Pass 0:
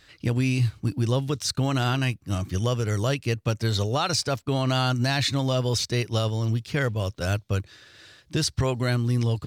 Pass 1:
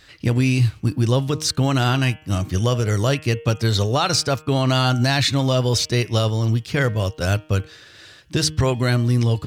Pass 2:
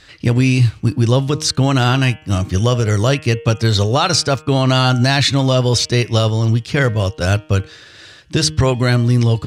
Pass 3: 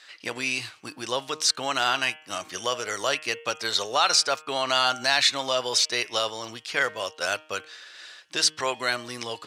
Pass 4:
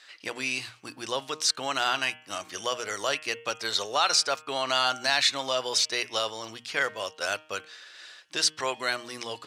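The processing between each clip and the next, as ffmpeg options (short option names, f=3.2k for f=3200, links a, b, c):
-af "bandreject=f=155:t=h:w=4,bandreject=f=310:t=h:w=4,bandreject=f=465:t=h:w=4,bandreject=f=620:t=h:w=4,bandreject=f=775:t=h:w=4,bandreject=f=930:t=h:w=4,bandreject=f=1.085k:t=h:w=4,bandreject=f=1.24k:t=h:w=4,bandreject=f=1.395k:t=h:w=4,bandreject=f=1.55k:t=h:w=4,bandreject=f=1.705k:t=h:w=4,bandreject=f=1.86k:t=h:w=4,bandreject=f=2.015k:t=h:w=4,bandreject=f=2.17k:t=h:w=4,bandreject=f=2.325k:t=h:w=4,bandreject=f=2.48k:t=h:w=4,bandreject=f=2.635k:t=h:w=4,bandreject=f=2.79k:t=h:w=4,bandreject=f=2.945k:t=h:w=4,bandreject=f=3.1k:t=h:w=4,bandreject=f=3.255k:t=h:w=4,bandreject=f=3.41k:t=h:w=4,volume=5.5dB"
-af "lowpass=10k,volume=4.5dB"
-af "highpass=740,volume=-4dB"
-af "bandreject=f=60:t=h:w=6,bandreject=f=120:t=h:w=6,bandreject=f=180:t=h:w=6,bandreject=f=240:t=h:w=6,volume=-2.5dB"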